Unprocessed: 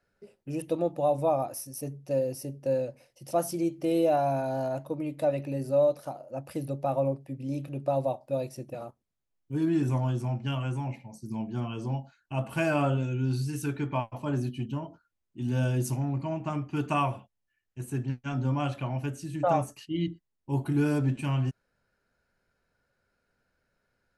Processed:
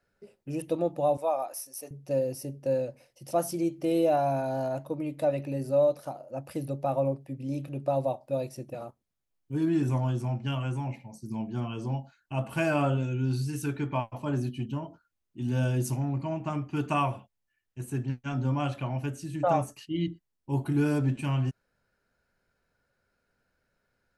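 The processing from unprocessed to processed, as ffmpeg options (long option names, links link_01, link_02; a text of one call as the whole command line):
ffmpeg -i in.wav -filter_complex "[0:a]asettb=1/sr,asplit=3[link_01][link_02][link_03];[link_01]atrim=end=1.174[link_04];[link_02]atrim=start=1.17:end=1.91,asetpts=PTS-STARTPTS,afade=type=in:duration=0.004:curve=qsin,afade=type=out:start_time=0.736:duration=0.004:curve=qsin,highpass=570[link_05];[link_03]atrim=start=1.906[link_06];[link_04][link_05]acrossfade=duration=0.004:curve1=hsin:curve2=qsin[link_07];[link_07][link_06]acrossfade=duration=0.004:curve1=qsin:curve2=hsin" out.wav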